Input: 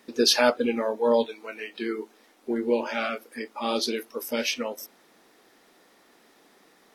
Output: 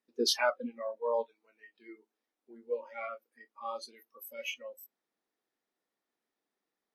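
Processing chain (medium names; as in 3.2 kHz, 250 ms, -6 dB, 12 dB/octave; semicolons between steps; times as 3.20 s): spectral noise reduction 22 dB; dynamic bell 1.4 kHz, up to +4 dB, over -38 dBFS, Q 0.77; trim -8.5 dB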